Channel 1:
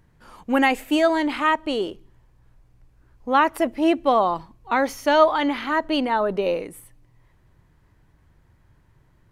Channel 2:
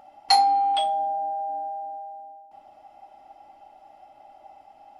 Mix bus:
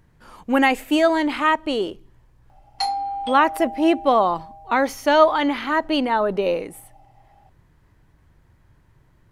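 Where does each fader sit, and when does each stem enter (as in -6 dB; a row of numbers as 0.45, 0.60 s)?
+1.5, -6.0 dB; 0.00, 2.50 s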